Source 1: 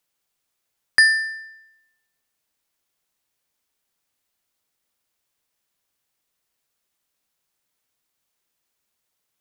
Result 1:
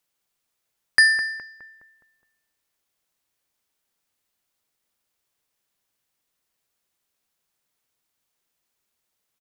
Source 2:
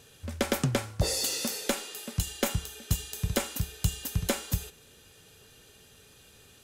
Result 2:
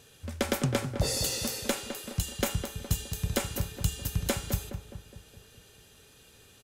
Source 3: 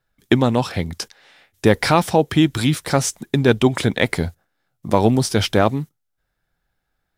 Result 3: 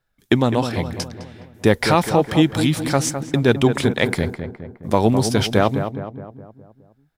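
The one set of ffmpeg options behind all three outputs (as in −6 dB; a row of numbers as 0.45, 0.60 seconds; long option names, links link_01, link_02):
-filter_complex "[0:a]asplit=2[link_01][link_02];[link_02]adelay=208,lowpass=frequency=1600:poles=1,volume=-8dB,asplit=2[link_03][link_04];[link_04]adelay=208,lowpass=frequency=1600:poles=1,volume=0.54,asplit=2[link_05][link_06];[link_06]adelay=208,lowpass=frequency=1600:poles=1,volume=0.54,asplit=2[link_07][link_08];[link_08]adelay=208,lowpass=frequency=1600:poles=1,volume=0.54,asplit=2[link_09][link_10];[link_10]adelay=208,lowpass=frequency=1600:poles=1,volume=0.54,asplit=2[link_11][link_12];[link_12]adelay=208,lowpass=frequency=1600:poles=1,volume=0.54[link_13];[link_01][link_03][link_05][link_07][link_09][link_11][link_13]amix=inputs=7:normalize=0,volume=-1dB"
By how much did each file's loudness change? −1.0, −0.5, −0.5 LU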